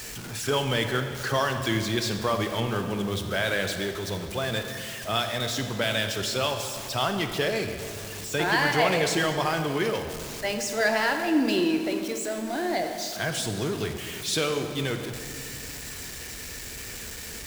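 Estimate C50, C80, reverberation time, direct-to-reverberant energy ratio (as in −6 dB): 7.0 dB, 8.0 dB, 2.3 s, 6.0 dB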